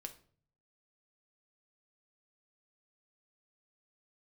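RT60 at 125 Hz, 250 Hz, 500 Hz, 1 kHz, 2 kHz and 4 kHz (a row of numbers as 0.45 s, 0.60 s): 0.90 s, 0.65 s, 0.55 s, 0.45 s, 0.40 s, 0.35 s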